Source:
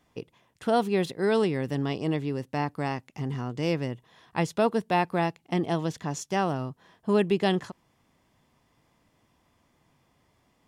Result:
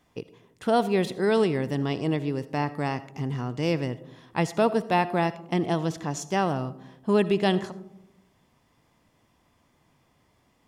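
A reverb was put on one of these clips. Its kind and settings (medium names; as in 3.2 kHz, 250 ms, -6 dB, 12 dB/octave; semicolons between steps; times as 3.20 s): algorithmic reverb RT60 0.84 s, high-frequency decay 0.25×, pre-delay 35 ms, DRR 15.5 dB; trim +1.5 dB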